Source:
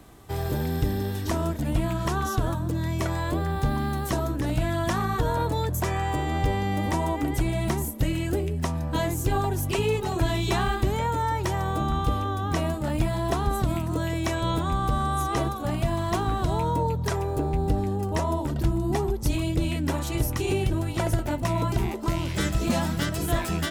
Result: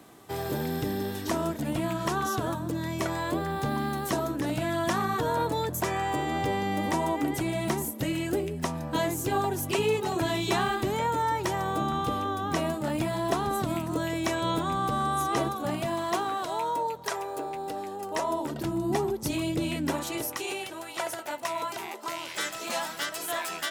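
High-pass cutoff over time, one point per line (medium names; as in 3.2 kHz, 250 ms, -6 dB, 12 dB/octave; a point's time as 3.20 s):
15.66 s 180 Hz
16.49 s 550 Hz
17.97 s 550 Hz
18.81 s 180 Hz
19.86 s 180 Hz
20.54 s 700 Hz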